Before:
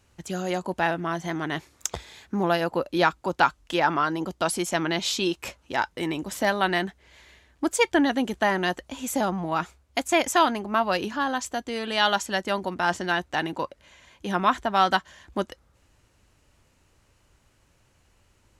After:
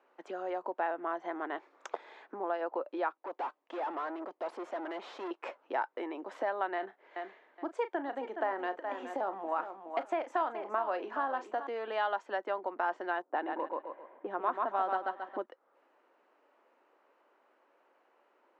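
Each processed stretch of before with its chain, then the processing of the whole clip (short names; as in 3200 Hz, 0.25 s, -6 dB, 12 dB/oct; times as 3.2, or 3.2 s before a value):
3.17–5.31 bell 1400 Hz -8.5 dB 0.32 oct + tube stage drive 34 dB, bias 0.75
6.74–11.67 doubler 36 ms -13 dB + feedback echo 0.419 s, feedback 22%, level -14 dB
13.22–15.46 low-pass opened by the level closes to 870 Hz, open at -20.5 dBFS + low shelf 360 Hz +8.5 dB + feedback echo 0.136 s, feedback 26%, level -3.5 dB
whole clip: LPF 1100 Hz 12 dB/oct; compressor 4:1, threshold -34 dBFS; Bessel high-pass 550 Hz, order 8; gain +5.5 dB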